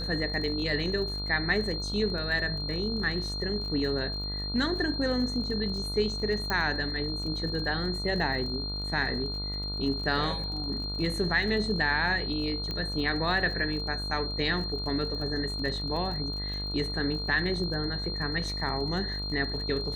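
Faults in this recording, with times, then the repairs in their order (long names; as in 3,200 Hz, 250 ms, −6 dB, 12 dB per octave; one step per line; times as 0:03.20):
mains buzz 50 Hz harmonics 29 −36 dBFS
surface crackle 37 per second −38 dBFS
whistle 4,200 Hz −34 dBFS
0:06.50: click −15 dBFS
0:12.71: click −21 dBFS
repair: click removal
hum removal 50 Hz, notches 29
notch filter 4,200 Hz, Q 30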